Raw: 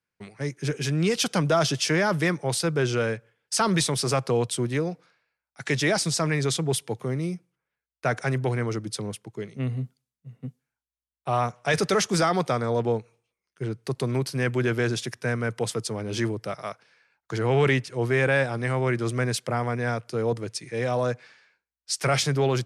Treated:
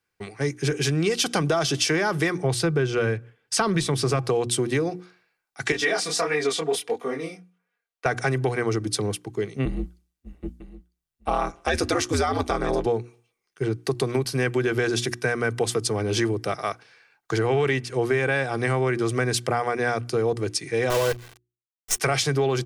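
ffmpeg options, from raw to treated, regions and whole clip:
ffmpeg -i in.wav -filter_complex "[0:a]asettb=1/sr,asplit=3[link_01][link_02][link_03];[link_01]atrim=end=2.424[link_04];[link_02]atrim=start=2.42:end=4.24,asetpts=PTS-STARTPTS,afade=type=in:duration=0.004:curve=qsin,afade=type=out:start_time=1.816:duration=0.004:curve=qsin,bass=frequency=250:gain=6,treble=frequency=4000:gain=-6,bandreject=frequency=810:width=26[link_05];[link_03]atrim=start=4.236[link_06];[link_04][link_05]acrossfade=duration=0.004:curve1=hsin:curve2=qsin[link_07];[link_07][link_06]acrossfade=duration=0.004:curve1=qsin:curve2=hsin,asettb=1/sr,asplit=3[link_08][link_09][link_10];[link_08]atrim=end=5.724[link_11];[link_09]atrim=start=5.72:end=8.06,asetpts=PTS-STARTPTS,afade=type=in:duration=0.004:curve=qsin,afade=type=out:start_time=2.336:duration=0.004:curve=qsin,bass=frequency=250:gain=-14,treble=frequency=4000:gain=-6,aecho=1:1:4.2:0.76,atrim=end_sample=103194,flanger=delay=20:depth=6.9:speed=1.5[link_12];[link_10]atrim=start=8.056[link_13];[link_11][link_12]acrossfade=duration=0.004:curve1=hsin:curve2=qsin[link_14];[link_14][link_13]acrossfade=duration=0.004:curve1=qsin:curve2=hsin,asettb=1/sr,asplit=3[link_15][link_16][link_17];[link_15]atrim=end=9.654[link_18];[link_16]atrim=start=9.65:end=12.86,asetpts=PTS-STARTPTS,afade=type=in:duration=0.004:curve=qsin,afade=type=out:start_time=3.206:duration=0.004:curve=qsin,aecho=1:1:951:0.158,atrim=end_sample=141561,aeval=exprs='val(0)*sin(2*PI*80*n/s)':channel_layout=same,asplit=2[link_19][link_20];[link_20]adelay=12,volume=-13dB[link_21];[link_19][link_21]amix=inputs=2:normalize=0,atrim=end_sample=141561[link_22];[link_17]atrim=start=12.856[link_23];[link_18][link_22]acrossfade=duration=0.004:curve1=hsin:curve2=qsin[link_24];[link_24][link_23]acrossfade=duration=0.004:curve1=qsin:curve2=hsin,asettb=1/sr,asplit=3[link_25][link_26][link_27];[link_25]atrim=end=20.904[link_28];[link_26]atrim=start=20.9:end=22,asetpts=PTS-STARTPTS,afade=type=in:duration=0.004:curve=qsin,afade=type=out:start_time=1.096:duration=0.004:curve=qsin,asuperstop=centerf=3900:order=12:qfactor=1.4,aecho=1:1:2:0.79,atrim=end_sample=48510,acrusher=bits=5:dc=4:mix=0:aa=0.000001[link_29];[link_27]atrim=start=21.996[link_30];[link_28][link_29]acrossfade=duration=0.004:curve1=hsin:curve2=qsin[link_31];[link_31][link_30]acrossfade=duration=0.004:curve1=qsin:curve2=hsin,bandreject=frequency=60:width_type=h:width=6,bandreject=frequency=120:width_type=h:width=6,bandreject=frequency=180:width_type=h:width=6,bandreject=frequency=240:width_type=h:width=6,bandreject=frequency=300:width_type=h:width=6,bandreject=frequency=360:width_type=h:width=6,aecho=1:1:2.6:0.38,acompressor=threshold=-26dB:ratio=6,volume=6.5dB" out.wav

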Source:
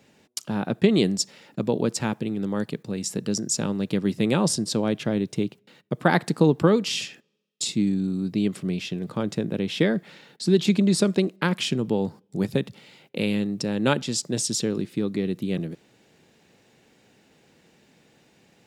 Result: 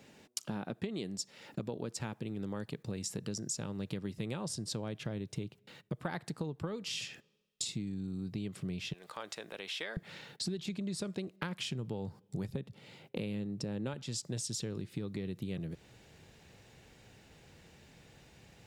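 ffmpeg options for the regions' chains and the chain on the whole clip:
ffmpeg -i in.wav -filter_complex "[0:a]asettb=1/sr,asplit=3[link_01][link_02][link_03];[link_01]atrim=end=8.934[link_04];[link_02]atrim=start=8.93:end=9.97,asetpts=PTS-STARTPTS,afade=type=in:duration=0.004:curve=qsin,afade=type=out:start_time=1.036:duration=0.004:curve=qsin,highpass=780,acompressor=threshold=-45dB:ratio=1.5:attack=3.2:release=140:knee=1:detection=peak[link_05];[link_03]atrim=start=9.966[link_06];[link_04][link_05]acrossfade=duration=0.004:curve1=hsin:curve2=qsin[link_07];[link_07][link_06]acrossfade=duration=0.004:curve1=qsin:curve2=hsin,asettb=1/sr,asplit=3[link_08][link_09][link_10];[link_08]atrim=end=12.504[link_11];[link_09]atrim=start=12.5:end=13.94,asetpts=PTS-STARTPTS,afade=type=in:duration=0.004:curve=qsin,afade=type=out:start_time=1.436:duration=0.004:curve=qsin,highpass=frequency=210:poles=1,tiltshelf=frequency=670:gain=5.5[link_12];[link_10]atrim=start=13.936[link_13];[link_11][link_12]acrossfade=duration=0.004:curve1=hsin:curve2=qsin[link_14];[link_14][link_13]acrossfade=duration=0.004:curve1=qsin:curve2=hsin,asubboost=boost=7:cutoff=87,acompressor=threshold=-35dB:ratio=10" out.wav

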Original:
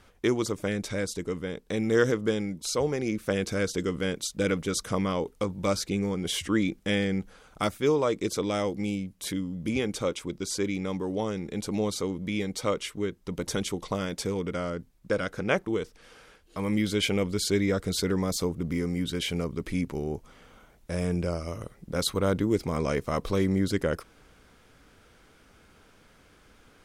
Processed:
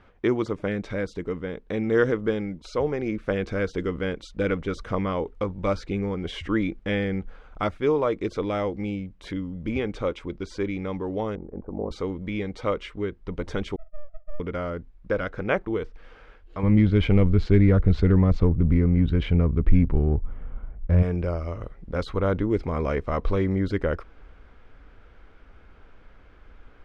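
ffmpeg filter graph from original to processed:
ffmpeg -i in.wav -filter_complex "[0:a]asettb=1/sr,asplit=3[link_01][link_02][link_03];[link_01]atrim=end=11.354[link_04];[link_02]atrim=start=11.35:end=11.91,asetpts=PTS-STARTPTS,afade=type=in:duration=0.004:curve=qsin,afade=type=out:start_time=0.556:duration=0.004:curve=qsin,lowpass=frequency=1000:width=0.5412,lowpass=frequency=1000:width=1.3066,equalizer=frequency=130:width_type=o:width=1.4:gain=-4,aeval=exprs='val(0)*sin(2*PI*23*n/s)':channel_layout=same[link_05];[link_03]atrim=start=11.906[link_06];[link_04][link_05]acrossfade=duration=0.004:curve1=hsin:curve2=qsin[link_07];[link_07][link_06]acrossfade=duration=0.004:curve1=qsin:curve2=hsin,asettb=1/sr,asplit=3[link_08][link_09][link_10];[link_08]atrim=end=13.764[link_11];[link_09]atrim=start=13.76:end=14.4,asetpts=PTS-STARTPTS,afade=type=in:duration=0.004:curve=qsin,afade=type=out:start_time=0.636:duration=0.004:curve=qsin,asuperpass=centerf=310:order=12:qfactor=6.5,aeval=exprs='abs(val(0))':channel_layout=same[link_12];[link_10]atrim=start=14.396[link_13];[link_11][link_12]acrossfade=duration=0.004:curve1=hsin:curve2=qsin[link_14];[link_14][link_13]acrossfade=duration=0.004:curve1=qsin:curve2=hsin,asettb=1/sr,asplit=3[link_15][link_16][link_17];[link_15]atrim=end=16.634[link_18];[link_16]atrim=start=16.63:end=21.03,asetpts=PTS-STARTPTS,afade=type=in:duration=0.004:curve=qsin,afade=type=out:start_time=4.396:duration=0.004:curve=qsin,bass=frequency=250:gain=12,treble=frequency=4000:gain=-2,adynamicsmooth=sensitivity=4.5:basefreq=2300[link_19];[link_17]atrim=start=21.026[link_20];[link_18][link_19]acrossfade=duration=0.004:curve1=hsin:curve2=qsin[link_21];[link_21][link_20]acrossfade=duration=0.004:curve1=qsin:curve2=hsin,deesser=0.55,asubboost=boost=5:cutoff=61,lowpass=2300,volume=2.5dB" out.wav

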